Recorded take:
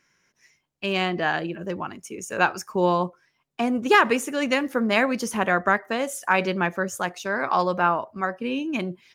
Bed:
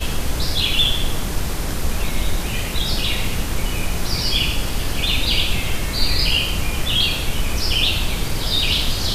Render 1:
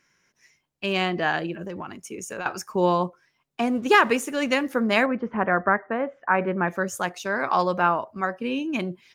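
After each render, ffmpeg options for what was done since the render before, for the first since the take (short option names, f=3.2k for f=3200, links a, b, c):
-filter_complex "[0:a]asettb=1/sr,asplit=3[a][b][c];[a]atrim=end=1.654[d];[b]atrim=start=1.65:end=2.46,asetpts=PTS-STARTPTS,afade=t=in:d=0.004:c=qsin,afade=t=out:st=0.806:d=0.004:c=qsin,acompressor=threshold=-29dB:ratio=6:attack=3.2:release=140:knee=1:detection=peak[e];[c]atrim=start=2.456[f];[d][e]acrossfade=d=0.004:c1=hsin:c2=qsin[g];[g][f]acrossfade=d=0.004:c1=qsin:c2=hsin,asettb=1/sr,asplit=3[h][i][j];[h]atrim=end=3.644[k];[i]atrim=start=3.64:end=4.56,asetpts=PTS-STARTPTS,afade=t=in:d=0.004:c=qsin,afade=t=out:st=0.916:d=0.004:c=qsin,aeval=exprs='sgn(val(0))*max(abs(val(0))-0.00282,0)':c=same[l];[j]atrim=start=4.556[m];[k][l]acrossfade=d=0.004:c1=hsin:c2=qsin[n];[n][m]acrossfade=d=0.004:c1=qsin:c2=hsin,asettb=1/sr,asplit=3[o][p][q];[o]atrim=end=5.064[r];[p]atrim=start=5.06:end=6.68,asetpts=PTS-STARTPTS,afade=t=in:d=0.004:c=qsin,afade=t=out:st=1.616:d=0.004:c=qsin,lowpass=f=1.9k:w=0.5412,lowpass=f=1.9k:w=1.3066[s];[q]atrim=start=6.676[t];[r][s]acrossfade=d=0.004:c1=hsin:c2=qsin[u];[u][t]acrossfade=d=0.004:c1=qsin:c2=hsin"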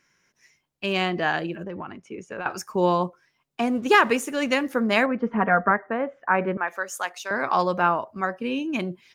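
-filter_complex "[0:a]asettb=1/sr,asplit=3[a][b][c];[a]atrim=end=1.634[d];[b]atrim=start=1.63:end=2.5,asetpts=PTS-STARTPTS,afade=t=in:d=0.004:c=qsin,afade=t=out:st=0.866:d=0.004:c=qsin,lowpass=2.7k[e];[c]atrim=start=2.496[f];[d][e]acrossfade=d=0.004:c1=hsin:c2=qsin[g];[g][f]acrossfade=d=0.004:c1=qsin:c2=hsin,asettb=1/sr,asplit=3[h][i][j];[h]atrim=end=5.204[k];[i]atrim=start=5.2:end=5.71,asetpts=PTS-STARTPTS,afade=t=in:d=0.004:c=qsin,afade=t=out:st=0.506:d=0.004:c=qsin,aecho=1:1:4.3:0.65,atrim=end_sample=22491[l];[j]atrim=start=5.706[m];[k][l]acrossfade=d=0.004:c1=hsin:c2=qsin[n];[n][m]acrossfade=d=0.004:c1=qsin:c2=hsin,asettb=1/sr,asplit=3[o][p][q];[o]atrim=end=6.574[r];[p]atrim=start=6.57:end=7.31,asetpts=PTS-STARTPTS,afade=t=in:d=0.004:c=qsin,afade=t=out:st=0.736:d=0.004:c=qsin,highpass=710[s];[q]atrim=start=7.306[t];[r][s]acrossfade=d=0.004:c1=hsin:c2=qsin[u];[u][t]acrossfade=d=0.004:c1=qsin:c2=hsin"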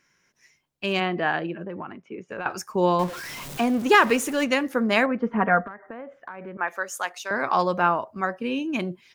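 -filter_complex "[0:a]asplit=3[a][b][c];[a]afade=t=out:st=0.99:d=0.02[d];[b]highpass=120,lowpass=2.9k,afade=t=in:st=0.99:d=0.02,afade=t=out:st=2.28:d=0.02[e];[c]afade=t=in:st=2.28:d=0.02[f];[d][e][f]amix=inputs=3:normalize=0,asettb=1/sr,asplit=3[g][h][i];[g]atrim=end=2.994[j];[h]atrim=start=2.99:end=4.45,asetpts=PTS-STARTPTS,afade=t=in:d=0.004:c=qsin,afade=t=out:st=1.456:d=0.004:c=qsin,aeval=exprs='val(0)+0.5*0.0299*sgn(val(0))':c=same[k];[i]atrim=start=4.446[l];[j][k]acrossfade=d=0.004:c1=hsin:c2=qsin[m];[m][l]acrossfade=d=0.004:c1=qsin:c2=hsin,asettb=1/sr,asplit=3[n][o][p];[n]atrim=end=5.634[q];[o]atrim=start=5.63:end=6.59,asetpts=PTS-STARTPTS,afade=t=in:d=0.004:c=qsin,afade=t=out:st=0.956:d=0.004:c=qsin,acompressor=threshold=-33dB:ratio=20:attack=3.2:release=140:knee=1:detection=peak[r];[p]atrim=start=6.586[s];[q][r]acrossfade=d=0.004:c1=hsin:c2=qsin[t];[t][s]acrossfade=d=0.004:c1=qsin:c2=hsin"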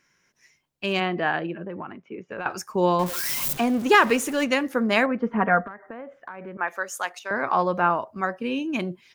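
-filter_complex "[0:a]asettb=1/sr,asplit=3[a][b][c];[a]atrim=end=1.294[d];[b]atrim=start=1.29:end=2.38,asetpts=PTS-STARTPTS,afade=t=in:d=0.004:c=qsin,afade=t=out:st=1.086:d=0.004:c=qsin,lowpass=4.5k[e];[c]atrim=start=2.376[f];[d][e]acrossfade=d=0.004:c1=hsin:c2=qsin[g];[g][f]acrossfade=d=0.004:c1=qsin:c2=hsin,asettb=1/sr,asplit=3[h][i][j];[h]atrim=end=3.064[k];[i]atrim=start=3.06:end=3.53,asetpts=PTS-STARTPTS,afade=t=in:d=0.004:c=qsin,afade=t=out:st=0.466:d=0.004:c=qsin,aemphasis=mode=production:type=75kf[l];[j]atrim=start=3.526[m];[k][l]acrossfade=d=0.004:c1=hsin:c2=qsin[n];[n][m]acrossfade=d=0.004:c1=qsin:c2=hsin,asettb=1/sr,asplit=3[o][p][q];[o]atrim=end=7.194[r];[p]atrim=start=7.19:end=7.9,asetpts=PTS-STARTPTS,afade=t=in:d=0.004:c=qsin,afade=t=out:st=0.706:d=0.004:c=qsin,acrossover=split=2800[s][t];[t]acompressor=threshold=-50dB:ratio=4:attack=1:release=60[u];[s][u]amix=inputs=2:normalize=0[v];[q]atrim=start=7.896[w];[r][v]acrossfade=d=0.004:c1=hsin:c2=qsin[x];[x][w]acrossfade=d=0.004:c1=qsin:c2=hsin"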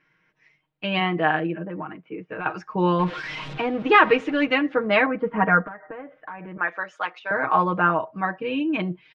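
-af "lowpass=f=3.3k:w=0.5412,lowpass=f=3.3k:w=1.3066,aecho=1:1:6.4:0.84"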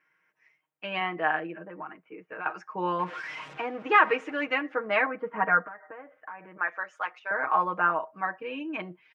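-af "highpass=f=1.1k:p=1,equalizer=f=3.9k:w=1.2:g=-12.5"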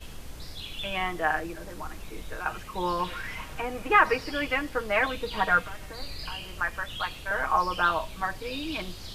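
-filter_complex "[1:a]volume=-20dB[a];[0:a][a]amix=inputs=2:normalize=0"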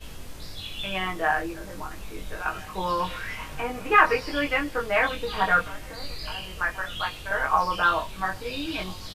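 -filter_complex "[0:a]asplit=2[a][b];[b]adelay=21,volume=-2dB[c];[a][c]amix=inputs=2:normalize=0,asplit=2[d][e];[e]adelay=1341,volume=-22dB,highshelf=f=4k:g=-30.2[f];[d][f]amix=inputs=2:normalize=0"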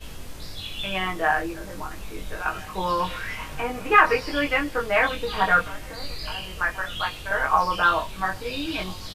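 -af "volume=2dB,alimiter=limit=-3dB:level=0:latency=1"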